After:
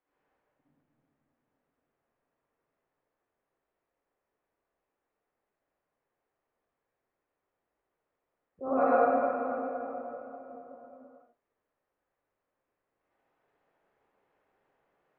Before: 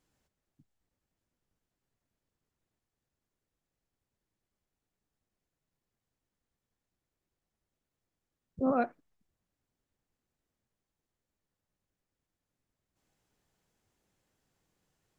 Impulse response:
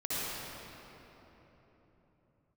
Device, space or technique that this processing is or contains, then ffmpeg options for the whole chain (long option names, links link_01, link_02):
swimming-pool hall: -filter_complex "[1:a]atrim=start_sample=2205[link_01];[0:a][link_01]afir=irnorm=-1:irlink=0,acrossover=split=390 2600:gain=0.0891 1 0.0708[link_02][link_03][link_04];[link_02][link_03][link_04]amix=inputs=3:normalize=0,highshelf=frequency=3700:gain=-8,volume=3dB"